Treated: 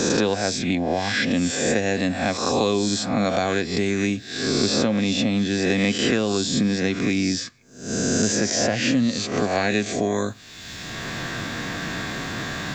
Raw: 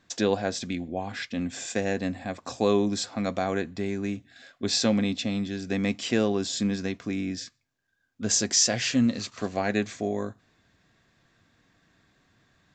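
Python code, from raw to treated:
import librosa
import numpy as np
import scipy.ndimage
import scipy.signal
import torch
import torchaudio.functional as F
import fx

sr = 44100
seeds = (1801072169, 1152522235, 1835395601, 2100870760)

y = fx.spec_swells(x, sr, rise_s=0.7)
y = fx.band_squash(y, sr, depth_pct=100)
y = F.gain(torch.from_numpy(y), 4.0).numpy()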